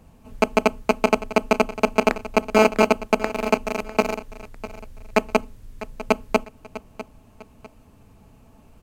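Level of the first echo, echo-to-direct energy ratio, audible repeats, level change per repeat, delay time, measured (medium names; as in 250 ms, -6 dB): -15.5 dB, -15.0 dB, 2, -9.5 dB, 650 ms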